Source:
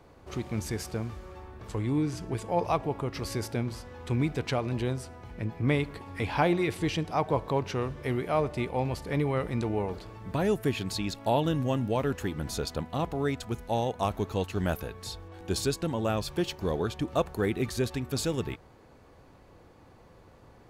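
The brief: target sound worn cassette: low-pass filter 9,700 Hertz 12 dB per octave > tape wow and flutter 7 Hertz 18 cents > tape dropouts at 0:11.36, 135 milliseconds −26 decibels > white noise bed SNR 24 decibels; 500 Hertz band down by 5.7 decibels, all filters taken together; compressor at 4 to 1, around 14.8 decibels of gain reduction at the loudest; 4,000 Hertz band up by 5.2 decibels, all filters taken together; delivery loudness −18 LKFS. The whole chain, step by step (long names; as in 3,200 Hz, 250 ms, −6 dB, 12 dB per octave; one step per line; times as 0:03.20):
parametric band 500 Hz −7.5 dB
parametric band 4,000 Hz +6.5 dB
downward compressor 4 to 1, threshold −42 dBFS
low-pass filter 9,700 Hz 12 dB per octave
tape wow and flutter 7 Hz 18 cents
tape dropouts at 0:11.36, 135 ms −26 dB
white noise bed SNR 24 dB
level +26 dB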